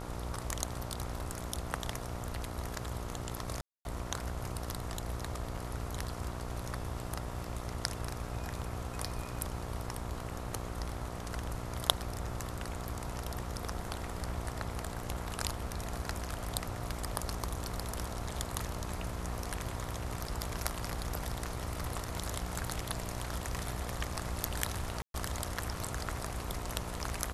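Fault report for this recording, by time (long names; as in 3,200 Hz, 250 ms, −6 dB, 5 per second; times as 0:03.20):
mains buzz 60 Hz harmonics 23 −42 dBFS
0:03.61–0:03.85: drop-out 241 ms
0:25.02–0:25.14: drop-out 122 ms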